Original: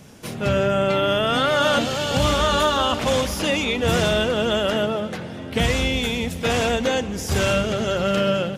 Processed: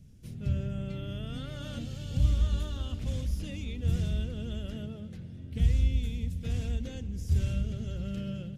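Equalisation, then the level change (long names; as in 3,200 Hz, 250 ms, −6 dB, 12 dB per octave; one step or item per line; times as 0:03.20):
guitar amp tone stack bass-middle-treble 10-0-1
low-shelf EQ 160 Hz +11 dB
0.0 dB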